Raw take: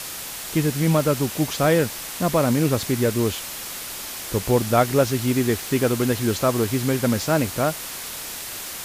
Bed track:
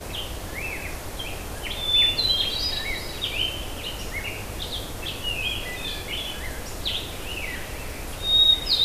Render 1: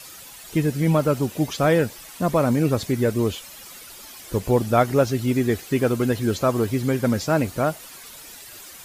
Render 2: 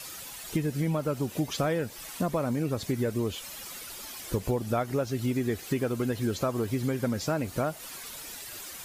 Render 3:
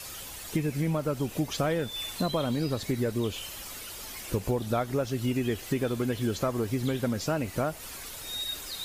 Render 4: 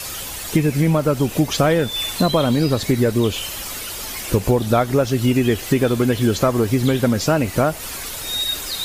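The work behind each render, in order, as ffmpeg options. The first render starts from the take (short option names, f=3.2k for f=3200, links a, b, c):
-af "afftdn=nr=12:nf=-33"
-af "acompressor=threshold=-25dB:ratio=6"
-filter_complex "[1:a]volume=-18dB[a];[0:a][a]amix=inputs=2:normalize=0"
-af "volume=11.5dB"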